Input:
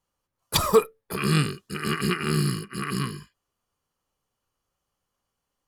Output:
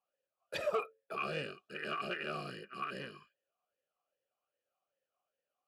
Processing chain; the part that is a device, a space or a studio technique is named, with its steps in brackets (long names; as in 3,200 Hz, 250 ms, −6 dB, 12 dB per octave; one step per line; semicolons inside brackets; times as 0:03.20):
talk box (tube saturation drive 20 dB, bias 0.3; formant filter swept between two vowels a-e 2.5 Hz)
level +5.5 dB